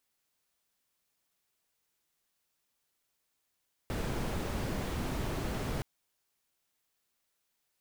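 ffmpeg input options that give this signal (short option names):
-f lavfi -i "anoisesrc=c=brown:a=0.0933:d=1.92:r=44100:seed=1"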